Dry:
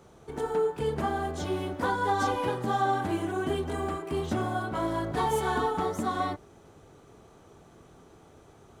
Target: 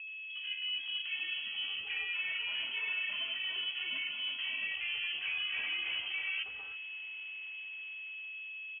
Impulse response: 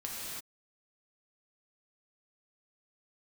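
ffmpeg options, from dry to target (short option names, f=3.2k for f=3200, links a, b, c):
-filter_complex "[0:a]acrossover=split=300[a][b];[b]dynaudnorm=f=530:g=7:m=9.5dB[c];[a][c]amix=inputs=2:normalize=0,volume=17.5dB,asoftclip=hard,volume=-17.5dB,areverse,acompressor=threshold=-30dB:ratio=10,areverse,acrossover=split=200|2200[d][e][f];[e]adelay=70[g];[f]adelay=390[h];[d][g][h]amix=inputs=3:normalize=0,aeval=exprs='val(0)+0.0141*sin(2*PI*810*n/s)':c=same,lowpass=f=2.9k:t=q:w=0.5098,lowpass=f=2.9k:t=q:w=0.6013,lowpass=f=2.9k:t=q:w=0.9,lowpass=f=2.9k:t=q:w=2.563,afreqshift=-3400,highpass=43,volume=-4.5dB"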